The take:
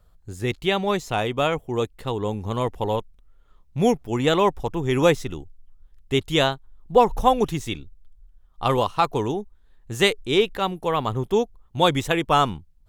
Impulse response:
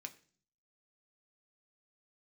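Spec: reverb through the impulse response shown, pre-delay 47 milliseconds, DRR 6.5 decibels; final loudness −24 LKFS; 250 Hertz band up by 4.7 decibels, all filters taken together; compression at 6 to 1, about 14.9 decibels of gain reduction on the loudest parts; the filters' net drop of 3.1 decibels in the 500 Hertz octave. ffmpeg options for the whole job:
-filter_complex "[0:a]equalizer=frequency=250:width_type=o:gain=8,equalizer=frequency=500:width_type=o:gain=-6.5,acompressor=threshold=-29dB:ratio=6,asplit=2[link_01][link_02];[1:a]atrim=start_sample=2205,adelay=47[link_03];[link_02][link_03]afir=irnorm=-1:irlink=0,volume=-2.5dB[link_04];[link_01][link_04]amix=inputs=2:normalize=0,volume=9.5dB"

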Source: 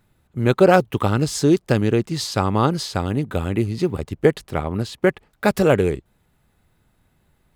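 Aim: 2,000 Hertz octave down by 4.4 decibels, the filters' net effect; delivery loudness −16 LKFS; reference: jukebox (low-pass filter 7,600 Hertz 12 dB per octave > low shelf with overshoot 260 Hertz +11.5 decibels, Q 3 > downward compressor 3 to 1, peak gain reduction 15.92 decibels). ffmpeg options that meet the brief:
ffmpeg -i in.wav -af "lowpass=7600,lowshelf=frequency=260:width_type=q:width=3:gain=11.5,equalizer=frequency=2000:width_type=o:gain=-6,acompressor=threshold=-22dB:ratio=3,volume=6.5dB" out.wav

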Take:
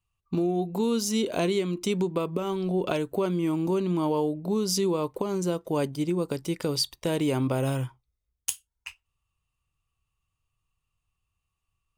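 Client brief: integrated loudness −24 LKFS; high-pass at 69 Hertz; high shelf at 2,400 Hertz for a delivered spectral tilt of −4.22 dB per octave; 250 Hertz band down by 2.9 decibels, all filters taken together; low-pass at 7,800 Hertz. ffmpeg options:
ffmpeg -i in.wav -af "highpass=69,lowpass=7800,equalizer=frequency=250:width_type=o:gain=-4.5,highshelf=frequency=2400:gain=5.5,volume=4.5dB" out.wav

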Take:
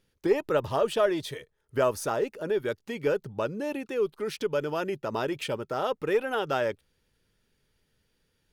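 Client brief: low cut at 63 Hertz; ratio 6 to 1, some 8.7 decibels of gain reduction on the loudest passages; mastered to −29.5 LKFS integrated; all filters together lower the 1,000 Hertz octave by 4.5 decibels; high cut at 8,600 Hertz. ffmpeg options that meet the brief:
ffmpeg -i in.wav -af "highpass=63,lowpass=8600,equalizer=frequency=1000:width_type=o:gain=-6.5,acompressor=threshold=-28dB:ratio=6,volume=4.5dB" out.wav

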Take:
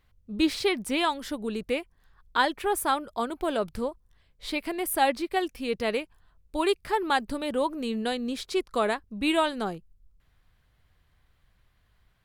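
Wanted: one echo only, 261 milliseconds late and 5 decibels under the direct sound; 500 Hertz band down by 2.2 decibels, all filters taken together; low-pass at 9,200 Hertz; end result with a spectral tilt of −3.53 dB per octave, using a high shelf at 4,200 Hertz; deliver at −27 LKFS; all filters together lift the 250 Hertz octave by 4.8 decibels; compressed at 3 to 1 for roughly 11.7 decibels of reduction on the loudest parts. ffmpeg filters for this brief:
ffmpeg -i in.wav -af "lowpass=9200,equalizer=frequency=250:width_type=o:gain=8.5,equalizer=frequency=500:width_type=o:gain=-6.5,highshelf=frequency=4200:gain=6.5,acompressor=threshold=-33dB:ratio=3,aecho=1:1:261:0.562,volume=7.5dB" out.wav

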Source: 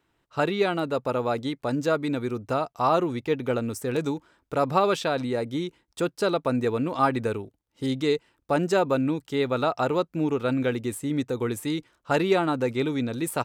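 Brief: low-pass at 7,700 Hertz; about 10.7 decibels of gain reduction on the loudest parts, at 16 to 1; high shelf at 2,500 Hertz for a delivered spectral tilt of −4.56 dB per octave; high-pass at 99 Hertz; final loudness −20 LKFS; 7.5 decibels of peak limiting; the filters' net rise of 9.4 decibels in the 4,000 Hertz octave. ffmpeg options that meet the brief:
ffmpeg -i in.wav -af "highpass=99,lowpass=7700,highshelf=frequency=2500:gain=5.5,equalizer=frequency=4000:width_type=o:gain=6.5,acompressor=threshold=-26dB:ratio=16,volume=13dB,alimiter=limit=-7.5dB:level=0:latency=1" out.wav

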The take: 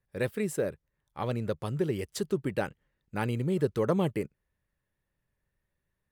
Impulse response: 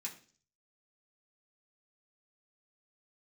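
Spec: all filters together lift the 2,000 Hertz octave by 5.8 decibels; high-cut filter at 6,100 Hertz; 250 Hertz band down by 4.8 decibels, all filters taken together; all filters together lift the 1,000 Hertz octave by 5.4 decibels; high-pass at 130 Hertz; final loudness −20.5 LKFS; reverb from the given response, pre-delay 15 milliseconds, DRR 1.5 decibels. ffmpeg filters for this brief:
-filter_complex "[0:a]highpass=130,lowpass=6100,equalizer=frequency=250:width_type=o:gain=-7,equalizer=frequency=1000:width_type=o:gain=6,equalizer=frequency=2000:width_type=o:gain=5.5,asplit=2[link_01][link_02];[1:a]atrim=start_sample=2205,adelay=15[link_03];[link_02][link_03]afir=irnorm=-1:irlink=0,volume=0.5dB[link_04];[link_01][link_04]amix=inputs=2:normalize=0,volume=10.5dB"

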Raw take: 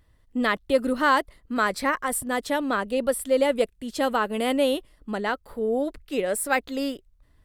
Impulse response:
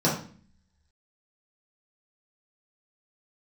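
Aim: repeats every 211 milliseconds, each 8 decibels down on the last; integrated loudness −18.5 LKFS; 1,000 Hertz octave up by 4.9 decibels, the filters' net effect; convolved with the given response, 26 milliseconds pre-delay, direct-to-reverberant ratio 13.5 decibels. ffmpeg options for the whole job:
-filter_complex "[0:a]equalizer=frequency=1000:width_type=o:gain=6,aecho=1:1:211|422|633|844|1055:0.398|0.159|0.0637|0.0255|0.0102,asplit=2[link_01][link_02];[1:a]atrim=start_sample=2205,adelay=26[link_03];[link_02][link_03]afir=irnorm=-1:irlink=0,volume=-27.5dB[link_04];[link_01][link_04]amix=inputs=2:normalize=0,volume=3.5dB"

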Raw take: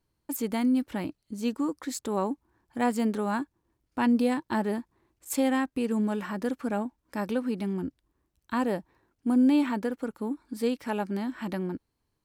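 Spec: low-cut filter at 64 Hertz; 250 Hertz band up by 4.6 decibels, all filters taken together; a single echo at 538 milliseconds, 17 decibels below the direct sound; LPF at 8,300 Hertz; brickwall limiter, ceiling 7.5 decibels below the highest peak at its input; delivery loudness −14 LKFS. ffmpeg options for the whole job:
ffmpeg -i in.wav -af "highpass=64,lowpass=8300,equalizer=frequency=250:width_type=o:gain=5,alimiter=limit=-18dB:level=0:latency=1,aecho=1:1:538:0.141,volume=14dB" out.wav

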